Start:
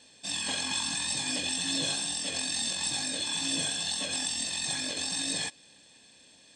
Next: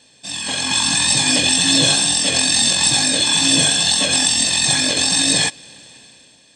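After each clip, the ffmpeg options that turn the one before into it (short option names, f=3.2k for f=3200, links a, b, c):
-af "equalizer=f=130:w=5.8:g=8,dynaudnorm=f=150:g=9:m=11dB,volume=5dB"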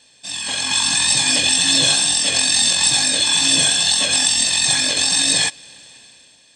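-af "equalizer=f=210:w=0.37:g=-7"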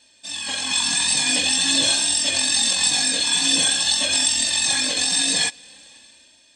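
-af "flanger=delay=3.2:depth=1:regen=-20:speed=0.47:shape=sinusoidal"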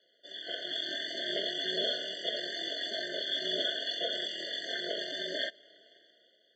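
-af "aeval=exprs='val(0)*sin(2*PI*100*n/s)':c=same,highpass=f=300:w=0.5412,highpass=f=300:w=1.3066,equalizer=f=370:t=q:w=4:g=-4,equalizer=f=590:t=q:w=4:g=4,equalizer=f=1.2k:t=q:w=4:g=-10,equalizer=f=1.7k:t=q:w=4:g=-6,equalizer=f=2.5k:t=q:w=4:g=-7,lowpass=f=3.1k:w=0.5412,lowpass=f=3.1k:w=1.3066,afftfilt=real='re*eq(mod(floor(b*sr/1024/710),2),0)':imag='im*eq(mod(floor(b*sr/1024/710),2),0)':win_size=1024:overlap=0.75"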